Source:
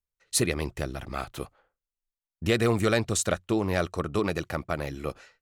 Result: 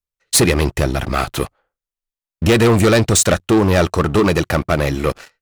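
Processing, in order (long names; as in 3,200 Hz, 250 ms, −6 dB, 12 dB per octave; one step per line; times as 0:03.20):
leveller curve on the samples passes 3
level +5.5 dB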